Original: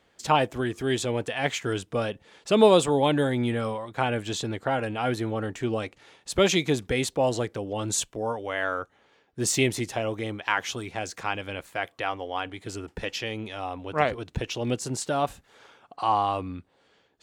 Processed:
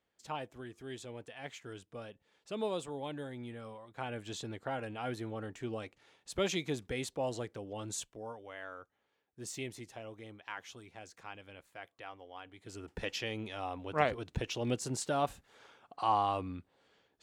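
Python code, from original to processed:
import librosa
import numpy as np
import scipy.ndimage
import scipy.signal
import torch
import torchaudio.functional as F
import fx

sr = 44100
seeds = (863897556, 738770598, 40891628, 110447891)

y = fx.gain(x, sr, db=fx.line((3.61, -18.5), (4.33, -11.5), (7.78, -11.5), (8.66, -18.0), (12.47, -18.0), (12.97, -6.0)))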